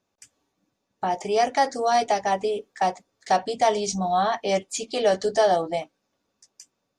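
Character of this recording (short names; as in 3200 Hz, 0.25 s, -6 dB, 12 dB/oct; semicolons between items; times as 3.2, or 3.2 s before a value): noise floor -78 dBFS; spectral tilt -3.5 dB/oct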